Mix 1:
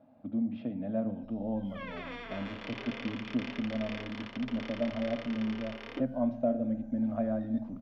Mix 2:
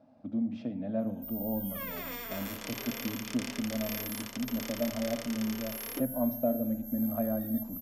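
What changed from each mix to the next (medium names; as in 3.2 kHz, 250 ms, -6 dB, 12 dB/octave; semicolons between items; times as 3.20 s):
master: remove low-pass 3.6 kHz 24 dB/octave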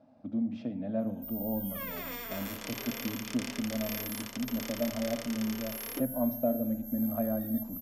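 no change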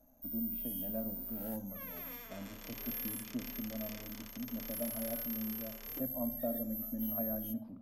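speech -8.0 dB; first sound: entry -1.00 s; second sound -10.0 dB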